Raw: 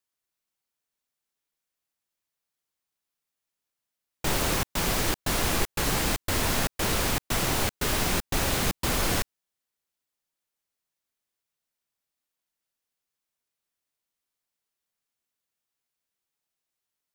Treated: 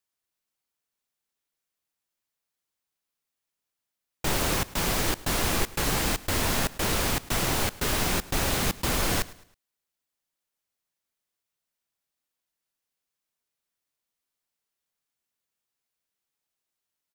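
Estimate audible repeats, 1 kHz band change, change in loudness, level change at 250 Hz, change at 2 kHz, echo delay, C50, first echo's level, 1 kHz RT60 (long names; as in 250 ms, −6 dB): 2, 0.0 dB, 0.0 dB, 0.0 dB, 0.0 dB, 107 ms, no reverb audible, −20.0 dB, no reverb audible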